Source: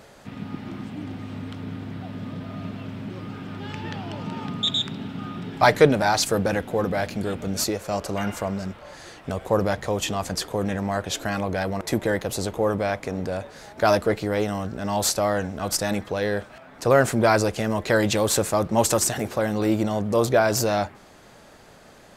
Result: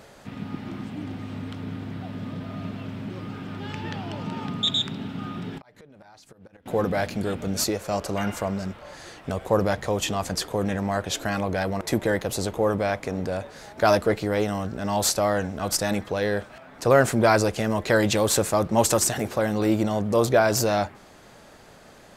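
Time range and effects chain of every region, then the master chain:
5.58–6.66 s: inverted gate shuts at -13 dBFS, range -26 dB + compression 8:1, threshold -45 dBFS + treble shelf 5.7 kHz -6 dB
whole clip: none

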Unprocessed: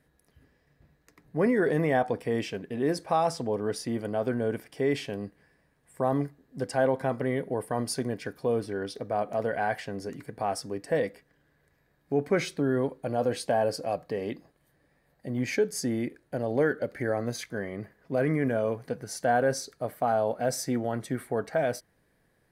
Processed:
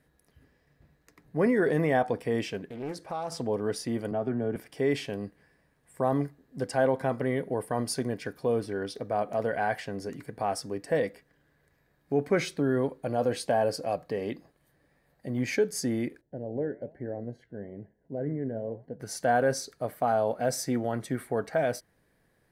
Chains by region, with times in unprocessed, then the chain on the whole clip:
2.67–3.32 s: compression 1.5:1, threshold -47 dBFS + loudspeaker Doppler distortion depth 0.36 ms
4.11–4.56 s: low-pass 1.3 kHz 6 dB/octave + comb of notches 510 Hz + three bands compressed up and down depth 40%
16.21–19.00 s: boxcar filter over 36 samples + flange 1.1 Hz, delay 2.9 ms, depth 7.5 ms, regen +86%
whole clip: none

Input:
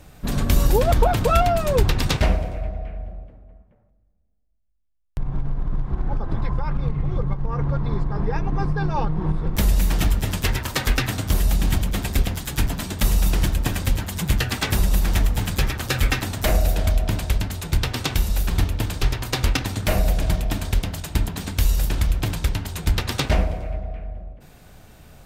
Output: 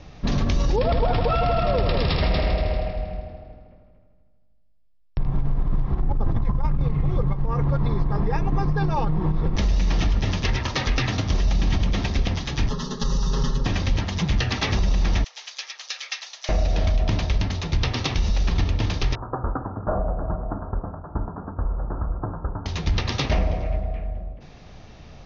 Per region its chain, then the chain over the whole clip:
0.76–5.26 s: brick-wall FIR low-pass 5.5 kHz + multi-head delay 79 ms, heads all three, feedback 47%, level -9 dB
6.00–6.84 s: median filter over 9 samples + bass shelf 340 Hz +6.5 dB + compressor with a negative ratio -18 dBFS, ratio -0.5
12.69–13.66 s: comb filter that takes the minimum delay 4.7 ms + static phaser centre 460 Hz, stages 8 + comb 7.4 ms, depth 80%
15.24–16.49 s: inverse Chebyshev high-pass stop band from 190 Hz, stop band 50 dB + differentiator
19.15–22.66 s: steep low-pass 1.5 kHz 96 dB/octave + bass shelf 330 Hz -10 dB
whole clip: peak limiter -16 dBFS; steep low-pass 6.3 kHz 96 dB/octave; band-stop 1.5 kHz, Q 9.3; trim +3 dB

